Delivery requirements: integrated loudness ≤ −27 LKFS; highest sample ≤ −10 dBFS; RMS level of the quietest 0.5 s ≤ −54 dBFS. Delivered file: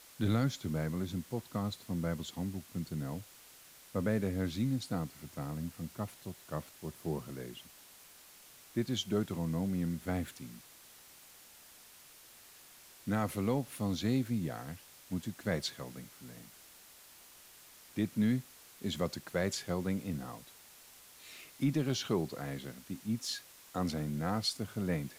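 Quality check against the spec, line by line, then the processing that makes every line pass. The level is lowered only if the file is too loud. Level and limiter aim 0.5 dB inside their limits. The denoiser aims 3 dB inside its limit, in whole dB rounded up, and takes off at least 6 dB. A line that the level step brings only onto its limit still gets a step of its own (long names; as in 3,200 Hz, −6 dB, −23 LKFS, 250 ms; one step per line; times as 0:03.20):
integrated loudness −36.5 LKFS: in spec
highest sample −20.5 dBFS: in spec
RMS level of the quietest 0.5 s −57 dBFS: in spec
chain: no processing needed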